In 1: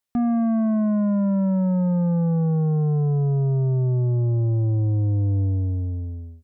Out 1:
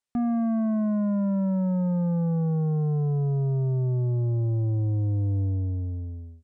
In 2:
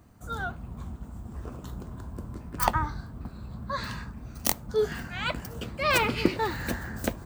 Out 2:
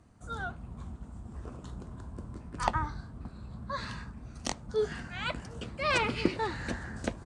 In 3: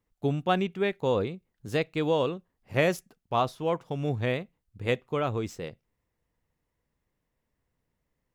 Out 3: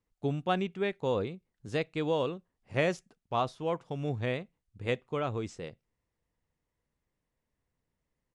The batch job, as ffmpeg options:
-filter_complex "[0:a]acrossover=split=8100[a][b];[b]acompressor=threshold=-52dB:ratio=4:attack=1:release=60[c];[a][c]amix=inputs=2:normalize=0,aresample=22050,aresample=44100,volume=-4dB"

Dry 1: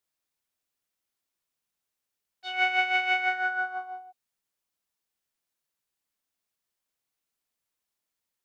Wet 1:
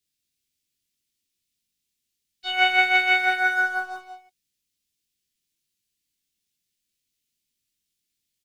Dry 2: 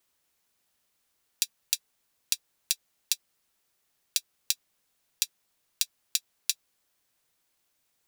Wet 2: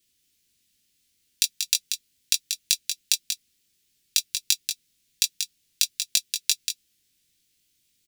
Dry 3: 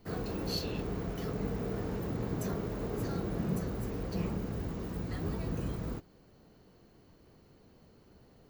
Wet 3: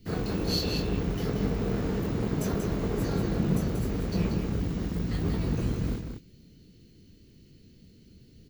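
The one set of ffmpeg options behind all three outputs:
-filter_complex "[0:a]highshelf=f=8.1k:g=-6.5,acrossover=split=370|2300[a][b][c];[b]aeval=exprs='sgn(val(0))*max(abs(val(0))-0.00335,0)':c=same[d];[c]asplit=2[e][f];[f]adelay=20,volume=-3dB[g];[e][g]amix=inputs=2:normalize=0[h];[a][d][h]amix=inputs=3:normalize=0,aecho=1:1:186:0.473,volume=7dB"

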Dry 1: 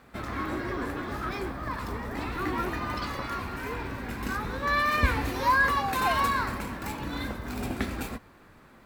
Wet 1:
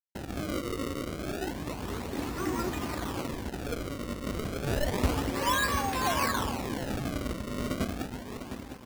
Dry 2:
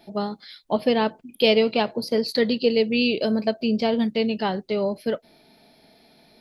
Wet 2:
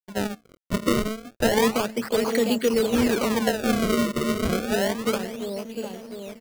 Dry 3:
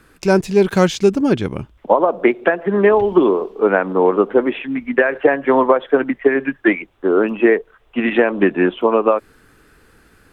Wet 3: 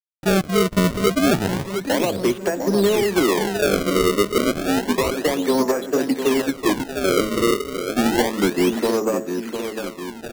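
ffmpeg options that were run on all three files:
-filter_complex "[0:a]lowshelf=f=140:g=-6,acrossover=split=290|3000[a][b][c];[b]acompressor=threshold=-20dB:ratio=2[d];[a][d][c]amix=inputs=3:normalize=0,highpass=46,equalizer=f=1.4k:w=0.72:g=-8,acrossover=split=180[e][f];[f]asoftclip=type=tanh:threshold=-17dB[g];[e][g]amix=inputs=2:normalize=0,anlmdn=0.251,bandreject=f=109.6:t=h:w=4,bandreject=f=219.2:t=h:w=4,bandreject=f=328.8:t=h:w=4,bandreject=f=438.4:t=h:w=4,bandreject=f=548:t=h:w=4,bandreject=f=657.6:t=h:w=4,bandreject=f=767.2:t=h:w=4,bandreject=f=876.8:t=h:w=4,bandreject=f=986.4:t=h:w=4,bandreject=f=1.096k:t=h:w=4,bandreject=f=1.2056k:t=h:w=4,bandreject=f=1.3152k:t=h:w=4,bandreject=f=1.4248k:t=h:w=4,bandreject=f=1.5344k:t=h:w=4,bandreject=f=1.644k:t=h:w=4,bandreject=f=1.7536k:t=h:w=4,bandreject=f=1.8632k:t=h:w=4,bandreject=f=1.9728k:t=h:w=4,bandreject=f=2.0824k:t=h:w=4,asplit=2[h][i];[i]aecho=0:1:703|1406|2109|2812|3515|4218|4921:0.422|0.232|0.128|0.0702|0.0386|0.0212|0.0117[j];[h][j]amix=inputs=2:normalize=0,acrossover=split=6000[k][l];[l]acompressor=threshold=-57dB:ratio=4:attack=1:release=60[m];[k][m]amix=inputs=2:normalize=0,acrusher=samples=30:mix=1:aa=0.000001:lfo=1:lforange=48:lforate=0.3,aeval=exprs='sgn(val(0))*max(abs(val(0))-0.00224,0)':c=same,volume=3.5dB"

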